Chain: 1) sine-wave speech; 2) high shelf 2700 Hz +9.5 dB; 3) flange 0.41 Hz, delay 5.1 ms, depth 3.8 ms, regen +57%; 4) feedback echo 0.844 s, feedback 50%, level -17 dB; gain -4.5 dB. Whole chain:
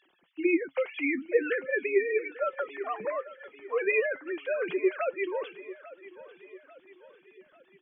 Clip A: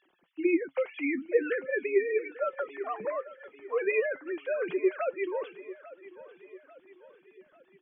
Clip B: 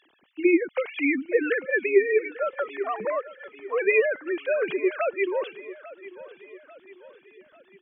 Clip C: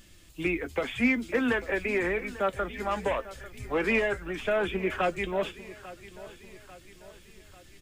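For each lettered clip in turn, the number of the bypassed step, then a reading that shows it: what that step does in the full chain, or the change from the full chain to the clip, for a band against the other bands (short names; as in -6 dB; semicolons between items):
2, 2 kHz band -3.0 dB; 3, momentary loudness spread change +1 LU; 1, 500 Hz band -3.5 dB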